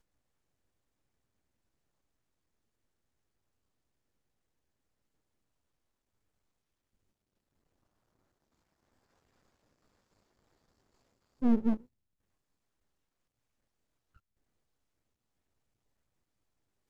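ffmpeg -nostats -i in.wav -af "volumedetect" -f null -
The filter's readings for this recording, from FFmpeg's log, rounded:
mean_volume: -42.4 dB
max_volume: -15.7 dB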